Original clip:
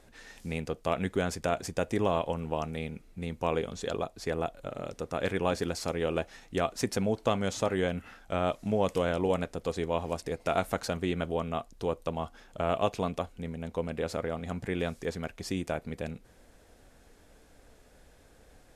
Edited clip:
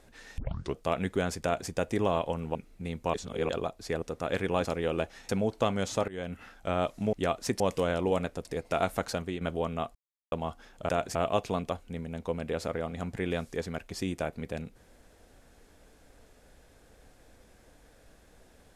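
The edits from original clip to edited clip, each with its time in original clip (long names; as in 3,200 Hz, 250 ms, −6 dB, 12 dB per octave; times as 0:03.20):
0:00.38: tape start 0.38 s
0:01.43–0:01.69: duplicate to 0:12.64
0:02.55–0:02.92: remove
0:03.51–0:03.86: reverse
0:04.39–0:04.93: remove
0:05.56–0:05.83: remove
0:06.47–0:06.94: move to 0:08.78
0:07.73–0:08.08: fade in, from −19.5 dB
0:09.63–0:10.20: remove
0:10.88–0:11.16: fade out, to −8 dB
0:11.70–0:12.07: silence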